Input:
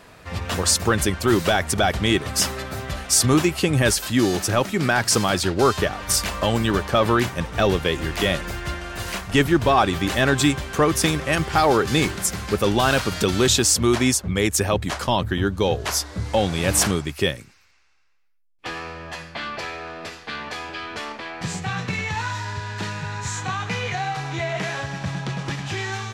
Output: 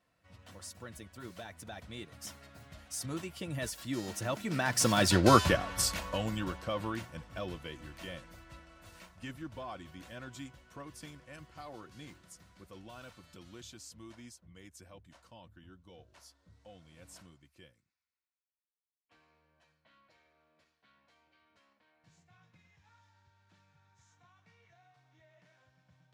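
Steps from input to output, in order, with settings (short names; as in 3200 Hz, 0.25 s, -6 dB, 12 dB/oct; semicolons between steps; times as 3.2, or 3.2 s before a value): Doppler pass-by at 5.27, 21 m/s, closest 4.7 m; notch comb 410 Hz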